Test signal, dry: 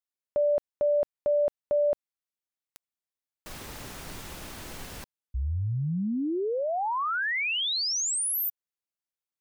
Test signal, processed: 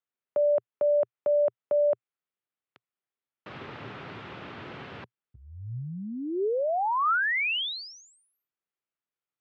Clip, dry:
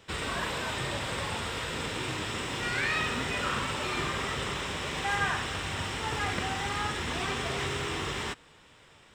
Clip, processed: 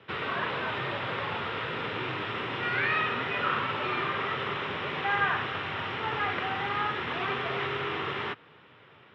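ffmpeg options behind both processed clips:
ffmpeg -i in.wav -filter_complex "[0:a]acrossover=split=450|1700[link_01][link_02][link_03];[link_01]alimiter=level_in=11.5dB:limit=-24dB:level=0:latency=1:release=194,volume=-11.5dB[link_04];[link_04][link_02][link_03]amix=inputs=3:normalize=0,highpass=frequency=100:width=0.5412,highpass=frequency=100:width=1.3066,equalizer=frequency=120:width_type=q:width=4:gain=4,equalizer=frequency=400:width_type=q:width=4:gain=4,equalizer=frequency=1300:width_type=q:width=4:gain=4,lowpass=frequency=3200:width=0.5412,lowpass=frequency=3200:width=1.3066,volume=1.5dB" out.wav

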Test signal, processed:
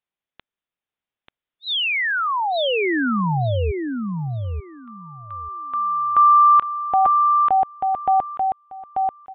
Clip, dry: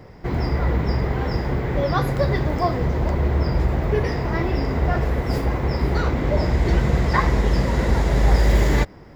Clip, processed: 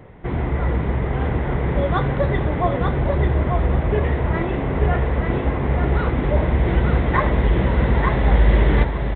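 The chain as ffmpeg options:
ffmpeg -i in.wav -af "aecho=1:1:888|1776|2664:0.631|0.107|0.0182,aresample=8000,aresample=44100" out.wav

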